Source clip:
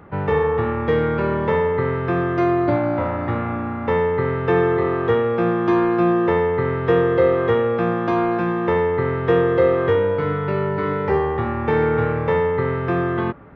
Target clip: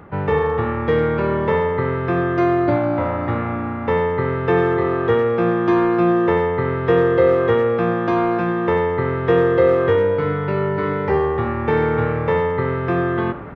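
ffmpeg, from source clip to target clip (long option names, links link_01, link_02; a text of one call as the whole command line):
ffmpeg -i in.wav -filter_complex "[0:a]areverse,acompressor=mode=upward:threshold=-24dB:ratio=2.5,areverse,asplit=2[link_01][link_02];[link_02]adelay=90,highpass=300,lowpass=3400,asoftclip=type=hard:threshold=-13dB,volume=-13dB[link_03];[link_01][link_03]amix=inputs=2:normalize=0,volume=1dB" out.wav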